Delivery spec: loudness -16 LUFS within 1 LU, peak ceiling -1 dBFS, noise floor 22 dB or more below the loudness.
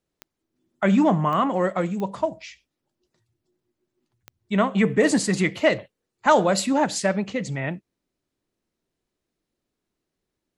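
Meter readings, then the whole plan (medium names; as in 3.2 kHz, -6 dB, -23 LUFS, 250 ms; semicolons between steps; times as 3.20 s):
clicks found 4; loudness -22.5 LUFS; peak level -4.5 dBFS; loudness target -16.0 LUFS
-> de-click; trim +6.5 dB; peak limiter -1 dBFS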